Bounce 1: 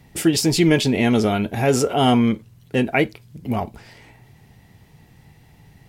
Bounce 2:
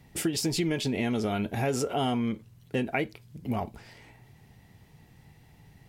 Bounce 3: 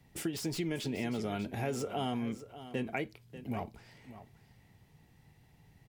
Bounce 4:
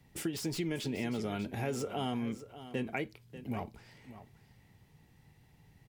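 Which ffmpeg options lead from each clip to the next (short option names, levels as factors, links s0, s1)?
-af "acompressor=threshold=0.112:ratio=6,volume=0.531"
-filter_complex "[0:a]acrossover=split=250|2300[s0][s1][s2];[s2]aeval=exprs='0.0355*(abs(mod(val(0)/0.0355+3,4)-2)-1)':c=same[s3];[s0][s1][s3]amix=inputs=3:normalize=0,aecho=1:1:591:0.211,volume=0.447"
-af "equalizer=f=680:w=5.9:g=-3"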